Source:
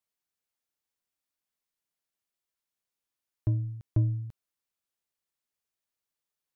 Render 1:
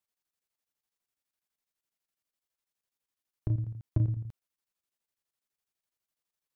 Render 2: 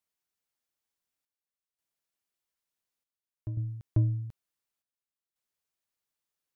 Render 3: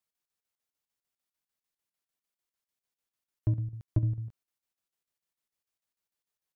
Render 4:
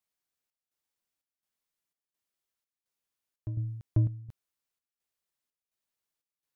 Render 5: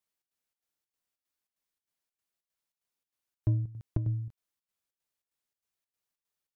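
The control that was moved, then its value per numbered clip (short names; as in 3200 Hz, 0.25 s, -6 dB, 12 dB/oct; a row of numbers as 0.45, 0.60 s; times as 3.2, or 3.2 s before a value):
chopper, rate: 12, 0.56, 6.7, 1.4, 3.2 Hz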